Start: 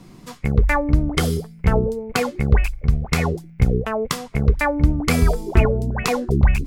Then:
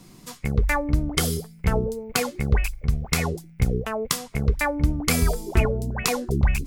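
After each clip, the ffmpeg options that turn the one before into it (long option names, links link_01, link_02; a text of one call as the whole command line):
ffmpeg -i in.wav -af "highshelf=frequency=4100:gain=11.5,volume=-5dB" out.wav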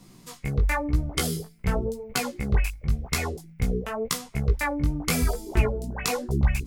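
ffmpeg -i in.wav -af "flanger=delay=15:depth=6.1:speed=0.93" out.wav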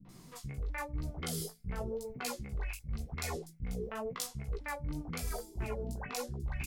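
ffmpeg -i in.wav -filter_complex "[0:a]acrossover=split=290|2900[link_01][link_02][link_03];[link_02]adelay=50[link_04];[link_03]adelay=90[link_05];[link_01][link_04][link_05]amix=inputs=3:normalize=0,areverse,acompressor=threshold=-33dB:ratio=6,areverse,volume=-2dB" out.wav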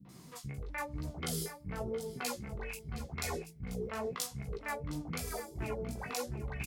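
ffmpeg -i in.wav -filter_complex "[0:a]highpass=76,asplit=2[link_01][link_02];[link_02]adelay=714,lowpass=frequency=3500:poles=1,volume=-11dB,asplit=2[link_03][link_04];[link_04]adelay=714,lowpass=frequency=3500:poles=1,volume=0.24,asplit=2[link_05][link_06];[link_06]adelay=714,lowpass=frequency=3500:poles=1,volume=0.24[link_07];[link_01][link_03][link_05][link_07]amix=inputs=4:normalize=0,volume=1dB" out.wav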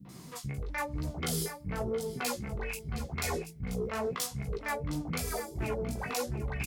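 ffmpeg -i in.wav -af "aeval=exprs='0.1*sin(PI/2*2.24*val(0)/0.1)':channel_layout=same,volume=-5.5dB" out.wav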